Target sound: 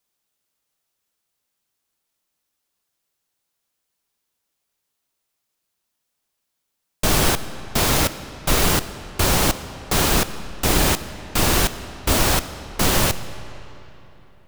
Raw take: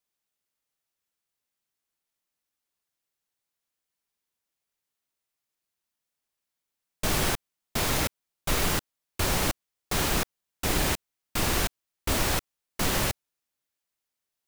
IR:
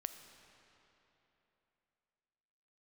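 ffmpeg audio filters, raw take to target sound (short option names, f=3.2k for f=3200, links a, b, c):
-filter_complex "[0:a]equalizer=f=2k:t=o:w=0.77:g=-2.5,asplit=2[a][b];[1:a]atrim=start_sample=2205[c];[b][c]afir=irnorm=-1:irlink=0,volume=7dB[d];[a][d]amix=inputs=2:normalize=0"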